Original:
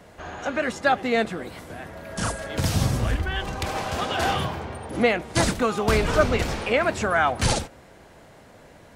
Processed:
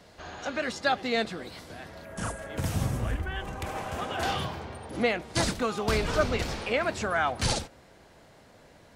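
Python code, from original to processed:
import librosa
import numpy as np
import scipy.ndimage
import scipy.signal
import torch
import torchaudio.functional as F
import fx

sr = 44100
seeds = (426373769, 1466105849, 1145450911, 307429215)

y = fx.peak_eq(x, sr, hz=4500.0, db=fx.steps((0.0, 10.0), (2.05, -7.5), (4.23, 4.5)), octaves=0.92)
y = F.gain(torch.from_numpy(y), -6.0).numpy()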